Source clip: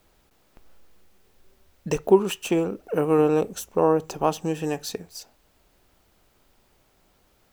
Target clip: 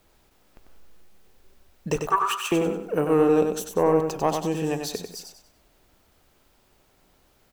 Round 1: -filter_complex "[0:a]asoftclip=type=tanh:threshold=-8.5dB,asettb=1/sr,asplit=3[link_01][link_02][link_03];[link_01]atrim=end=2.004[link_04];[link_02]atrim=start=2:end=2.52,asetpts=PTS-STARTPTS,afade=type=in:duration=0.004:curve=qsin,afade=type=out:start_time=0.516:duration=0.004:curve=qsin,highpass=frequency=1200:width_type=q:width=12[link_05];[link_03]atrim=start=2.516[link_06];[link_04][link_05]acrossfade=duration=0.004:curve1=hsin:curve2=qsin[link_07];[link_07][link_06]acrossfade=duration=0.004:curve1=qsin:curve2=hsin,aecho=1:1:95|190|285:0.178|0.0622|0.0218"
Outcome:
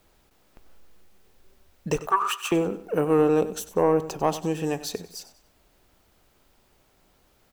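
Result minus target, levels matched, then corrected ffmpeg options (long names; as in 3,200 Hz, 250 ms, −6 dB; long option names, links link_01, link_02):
echo-to-direct −9 dB
-filter_complex "[0:a]asoftclip=type=tanh:threshold=-8.5dB,asettb=1/sr,asplit=3[link_01][link_02][link_03];[link_01]atrim=end=2.004[link_04];[link_02]atrim=start=2:end=2.52,asetpts=PTS-STARTPTS,afade=type=in:duration=0.004:curve=qsin,afade=type=out:start_time=0.516:duration=0.004:curve=qsin,highpass=frequency=1200:width_type=q:width=12[link_05];[link_03]atrim=start=2.516[link_06];[link_04][link_05]acrossfade=duration=0.004:curve1=hsin:curve2=qsin[link_07];[link_07][link_06]acrossfade=duration=0.004:curve1=qsin:curve2=hsin,aecho=1:1:95|190|285|380:0.501|0.175|0.0614|0.0215"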